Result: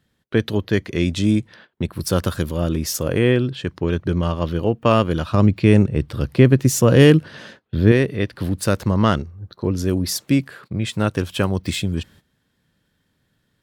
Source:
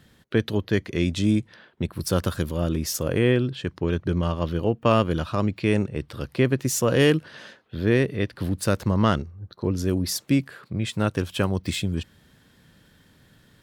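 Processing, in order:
0:05.34–0:07.92: low-shelf EQ 300 Hz +8.5 dB
noise gate −48 dBFS, range −15 dB
level +3.5 dB

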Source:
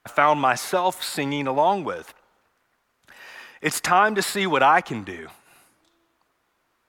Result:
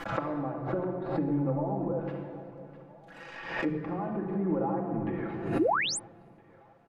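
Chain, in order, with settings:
in parallel at −4 dB: bit-depth reduction 6 bits, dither none
on the sum: downward compressor 2 to 1, threshold −29 dBFS, peak gain reduction 11.5 dB
treble cut that deepens with the level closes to 480 Hz, closed at −25 dBFS
on a send: echo with a time of its own for lows and highs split 460 Hz, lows 262 ms, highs 657 ms, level −15 dB
on the sum: treble cut that deepens with the level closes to 2,700 Hz, closed at −28 dBFS
high-shelf EQ 5,400 Hz −8 dB
rectangular room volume 3,000 cubic metres, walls mixed, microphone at 2.3 metres
sound drawn into the spectrogram rise, 0:05.59–0:05.99, 270–10,000 Hz −22 dBFS
high-shelf EQ 2,100 Hz −8.5 dB
comb filter 6 ms
background raised ahead of every attack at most 71 dB per second
level −4 dB

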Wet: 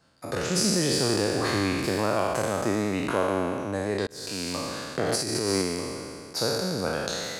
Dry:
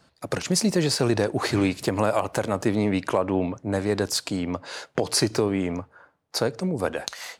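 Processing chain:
peak hold with a decay on every bin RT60 2.37 s
0:04.07–0:04.55: fade in
0:05.08–0:05.62: compressor whose output falls as the input rises −19 dBFS, ratio −0.5
level −6.5 dB

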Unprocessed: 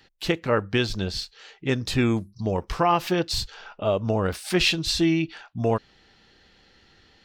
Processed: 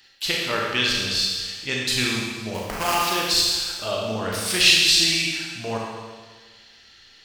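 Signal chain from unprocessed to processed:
tilt shelving filter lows −9 dB, about 1,400 Hz
0:02.54–0:02.95: sample-rate reduction 3,800 Hz, jitter 20%
four-comb reverb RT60 1.5 s, combs from 28 ms, DRR −3 dB
level −1.5 dB

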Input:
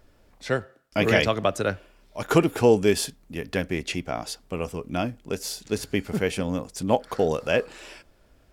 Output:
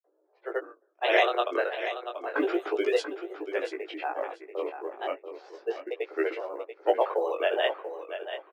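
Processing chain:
Chebyshev high-pass filter 330 Hz, order 8
low-pass that shuts in the quiet parts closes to 540 Hz, open at −18 dBFS
gate on every frequency bin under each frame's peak −30 dB strong
high-shelf EQ 5,700 Hz −11 dB
granular cloud, pitch spread up and down by 3 semitones
floating-point word with a short mantissa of 6 bits
chorus effect 0.32 Hz, delay 15.5 ms, depth 7.2 ms
on a send: repeating echo 686 ms, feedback 21%, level −10 dB
on the sum: level +3 dB

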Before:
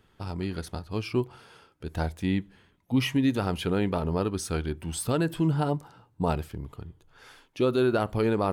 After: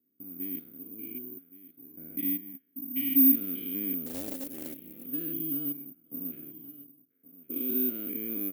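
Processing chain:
spectrum averaged block by block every 200 ms
formant filter i
low-pass that shuts in the quiet parts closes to 610 Hz, open at −33.5 dBFS
in parallel at −9 dB: slack as between gear wheels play −52 dBFS
on the sum: band-pass filter 160–5,700 Hz
on a send: single-tap delay 1,119 ms −16.5 dB
on the sum: bad sample-rate conversion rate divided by 3×, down none, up zero stuff
0:04.06–0:05.05: highs frequency-modulated by the lows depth 0.68 ms

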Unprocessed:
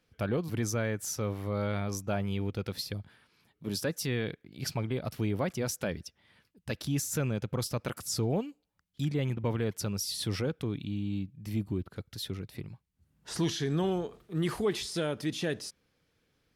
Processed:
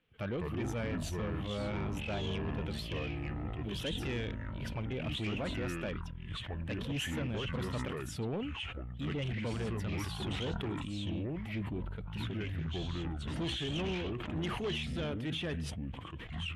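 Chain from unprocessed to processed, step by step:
spectral magnitudes quantised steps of 15 dB
delay with pitch and tempo change per echo 136 ms, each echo −5 semitones, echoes 3
high shelf with overshoot 3,900 Hz −8.5 dB, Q 3
soft clipping −26 dBFS, distortion −14 dB
low-pass filter 11,000 Hz 12 dB per octave
level that may fall only so fast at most 33 dB per second
level −4 dB

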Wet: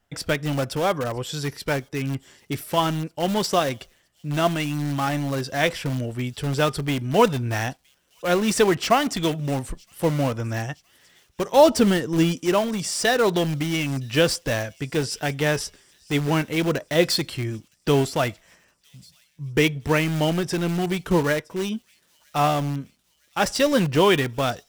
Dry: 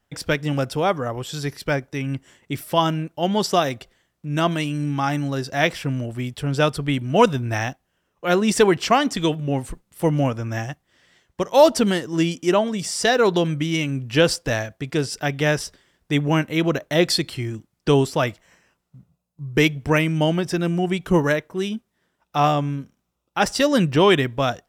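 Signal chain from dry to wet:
flanger 0.22 Hz, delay 1.4 ms, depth 1.1 ms, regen +82%
in parallel at −10 dB: wrap-around overflow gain 24.5 dB
0:11.53–0:12.38: on the sum: low-shelf EQ 330 Hz +6 dB
delay with a high-pass on its return 965 ms, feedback 56%, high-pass 4,100 Hz, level −21.5 dB
level +2.5 dB

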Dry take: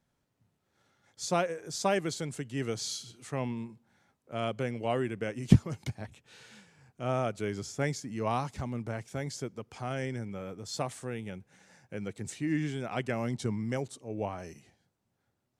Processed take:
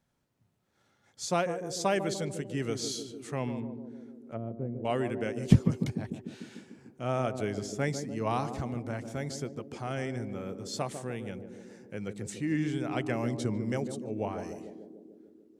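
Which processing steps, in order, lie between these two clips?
0:03.59–0:04.85: treble cut that deepens with the level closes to 360 Hz, closed at −32 dBFS
feedback echo with a band-pass in the loop 148 ms, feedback 78%, band-pass 310 Hz, level −6 dB

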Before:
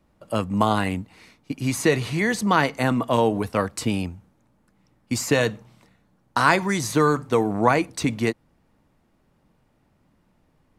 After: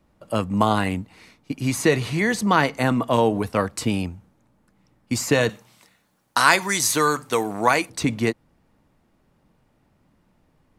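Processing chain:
0:05.49–0:07.90: spectral tilt +3 dB per octave
level +1 dB

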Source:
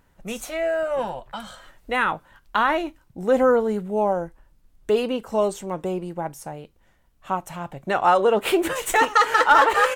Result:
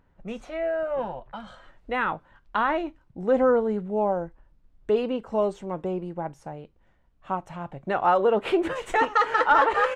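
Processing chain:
head-to-tape spacing loss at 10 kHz 28 dB, from 0:01.46 at 10 kHz 21 dB
level −1.5 dB

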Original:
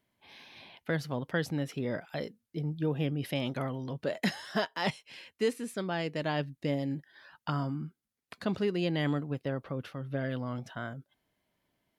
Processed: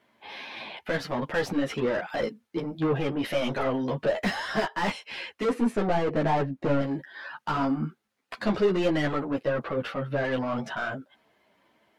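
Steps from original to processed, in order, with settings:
0:05.44–0:06.81: tilt shelving filter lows +7.5 dB, about 1,400 Hz
mid-hump overdrive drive 29 dB, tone 1,300 Hz, clips at −13 dBFS
string-ensemble chorus

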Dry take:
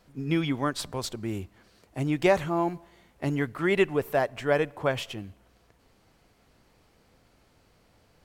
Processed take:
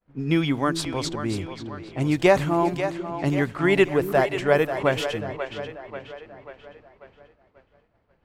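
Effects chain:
echo with a time of its own for lows and highs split 390 Hz, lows 372 ms, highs 538 ms, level −9 dB
downward expander −51 dBFS
low-pass that shuts in the quiet parts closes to 2,100 Hz, open at −24 dBFS
level +4.5 dB

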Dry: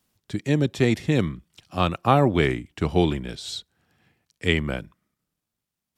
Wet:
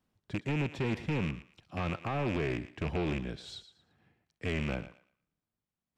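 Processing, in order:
loose part that buzzes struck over −27 dBFS, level −15 dBFS
low-pass filter 1,500 Hz 6 dB per octave
brickwall limiter −14.5 dBFS, peak gain reduction 10.5 dB
soft clipping −22.5 dBFS, distortion −11 dB
feedback echo with a high-pass in the loop 115 ms, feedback 27%, high-pass 530 Hz, level −12.5 dB
level −3.5 dB

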